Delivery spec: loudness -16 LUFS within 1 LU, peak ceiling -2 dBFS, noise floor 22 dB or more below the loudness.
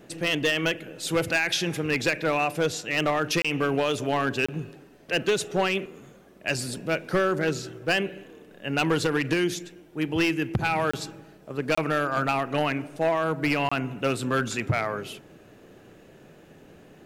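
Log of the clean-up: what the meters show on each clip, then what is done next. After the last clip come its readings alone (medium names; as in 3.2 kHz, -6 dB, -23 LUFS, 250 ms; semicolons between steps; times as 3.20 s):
clipped samples 1.1%; clipping level -17.0 dBFS; dropouts 5; longest dropout 25 ms; loudness -26.0 LUFS; peak level -17.0 dBFS; loudness target -16.0 LUFS
-> clip repair -17 dBFS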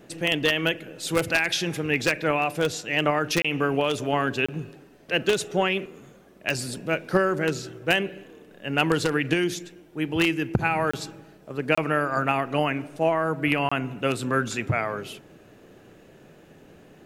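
clipped samples 0.0%; dropouts 5; longest dropout 25 ms
-> interpolate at 3.42/4.46/10.91/11.75/13.69 s, 25 ms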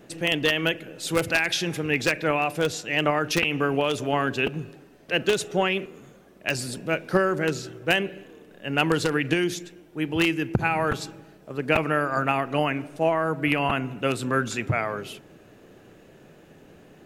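dropouts 0; loudness -25.0 LUFS; peak level -6.5 dBFS; loudness target -16.0 LUFS
-> trim +9 dB; peak limiter -2 dBFS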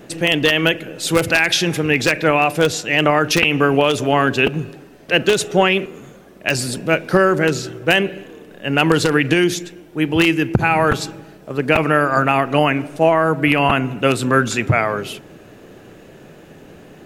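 loudness -16.5 LUFS; peak level -2.0 dBFS; noise floor -43 dBFS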